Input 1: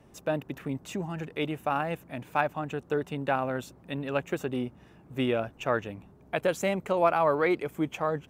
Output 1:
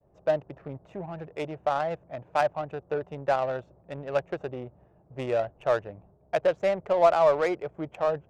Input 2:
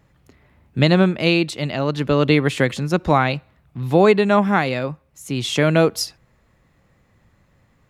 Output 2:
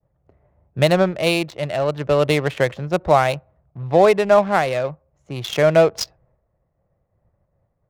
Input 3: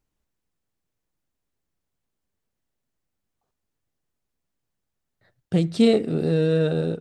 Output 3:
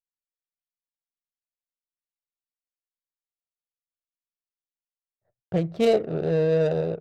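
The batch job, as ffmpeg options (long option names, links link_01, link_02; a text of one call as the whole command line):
ffmpeg -i in.wav -af "equalizer=frequency=250:width_type=o:width=0.67:gain=-10,equalizer=frequency=630:width_type=o:width=0.67:gain=9,equalizer=frequency=6300:width_type=o:width=0.67:gain=6,agate=range=-33dB:threshold=-52dB:ratio=3:detection=peak,adynamicsmooth=sensitivity=2:basefreq=910,volume=-2dB" out.wav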